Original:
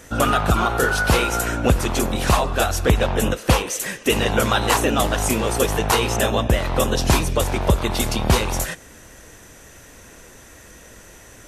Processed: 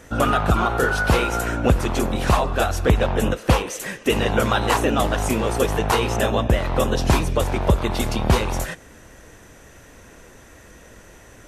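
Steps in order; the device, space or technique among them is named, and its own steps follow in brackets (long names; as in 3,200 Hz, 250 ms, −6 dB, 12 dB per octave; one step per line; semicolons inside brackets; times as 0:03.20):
behind a face mask (high-shelf EQ 3,400 Hz −7.5 dB)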